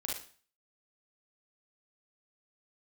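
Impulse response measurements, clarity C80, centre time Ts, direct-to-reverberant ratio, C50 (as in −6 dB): 9.5 dB, 44 ms, −3.0 dB, 1.5 dB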